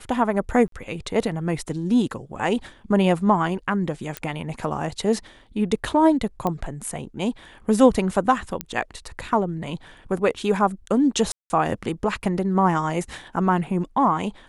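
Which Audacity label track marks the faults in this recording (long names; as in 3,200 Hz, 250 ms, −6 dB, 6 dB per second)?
0.680000	0.720000	drop-out 43 ms
4.170000	4.170000	click −12 dBFS
6.470000	6.470000	click −12 dBFS
8.610000	8.610000	click −10 dBFS
11.320000	11.500000	drop-out 180 ms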